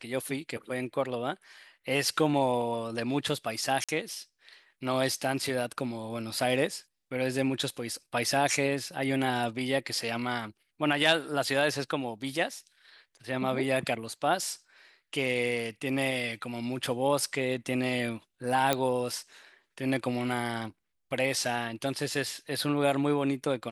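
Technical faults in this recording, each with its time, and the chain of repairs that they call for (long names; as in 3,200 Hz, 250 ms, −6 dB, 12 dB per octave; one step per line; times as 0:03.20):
0:03.84–0:03.89: drop-out 46 ms
0:18.73: click −10 dBFS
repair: click removal
repair the gap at 0:03.84, 46 ms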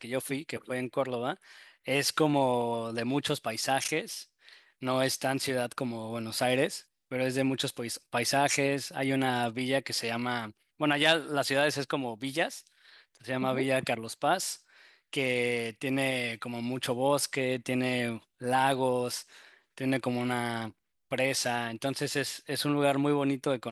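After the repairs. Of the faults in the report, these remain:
none of them is left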